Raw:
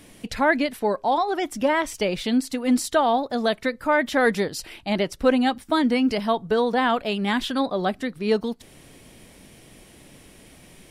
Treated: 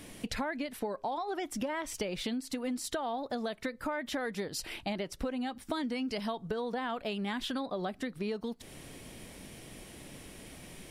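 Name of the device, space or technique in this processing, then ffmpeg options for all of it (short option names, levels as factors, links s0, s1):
serial compression, leveller first: -filter_complex "[0:a]acompressor=threshold=0.0794:ratio=3,acompressor=threshold=0.0224:ratio=5,asettb=1/sr,asplit=3[s0][s1][s2];[s0]atrim=end=5.674[s3];[s1]atrim=start=5.67:end=6.48,asetpts=PTS-STARTPTS,afade=t=in:d=0.004:c=qsin,afade=t=out:st=0.806:d=0.004:c=qsin,equalizer=f=6100:t=o:w=2.1:g=4.5[s4];[s2]atrim=start=6.476[s5];[s3][s4]acrossfade=d=0.004:c1=hsin:c2=qsin[s6];[s6][s5]acrossfade=d=0.004:c1=qsin:c2=hsin"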